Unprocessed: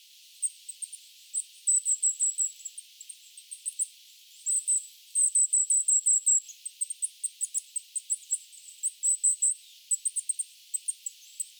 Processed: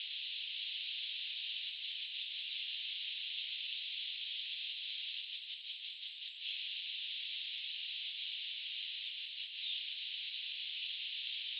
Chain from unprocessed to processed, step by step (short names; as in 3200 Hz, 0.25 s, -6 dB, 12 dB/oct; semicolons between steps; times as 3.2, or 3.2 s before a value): steep low-pass 3900 Hz 72 dB/oct; gain +16 dB